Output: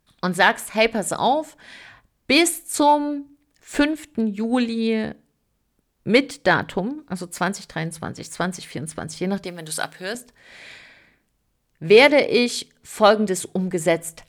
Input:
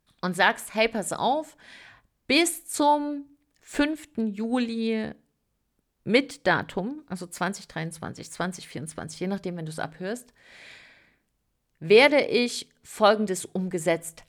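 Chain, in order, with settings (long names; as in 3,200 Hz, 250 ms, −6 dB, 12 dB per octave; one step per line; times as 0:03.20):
0:09.45–0:10.15: spectral tilt +3.5 dB per octave
in parallel at −11 dB: hard clipping −16.5 dBFS, distortion −11 dB
on the sum: level +3 dB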